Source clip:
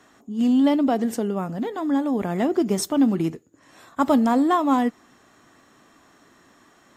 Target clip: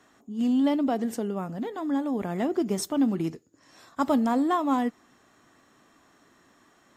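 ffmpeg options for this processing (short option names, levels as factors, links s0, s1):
-filter_complex "[0:a]asettb=1/sr,asplit=3[s0][s1][s2];[s0]atrim=end=3.274[s3];[s1]atrim=start=3.27:end=4.06,asetpts=PTS-STARTPTS,afade=t=in:d=0.004:c=qsin,afade=t=out:st=0.786:d=0.004:c=qsin,equalizer=f=5100:t=o:w=0.52:g=9[s4];[s2]atrim=start=4.056[s5];[s3][s4]acrossfade=d=0.004:c1=hsin:c2=qsin[s6];[s6][s5]acrossfade=d=0.004:c1=qsin:c2=hsin,volume=0.562"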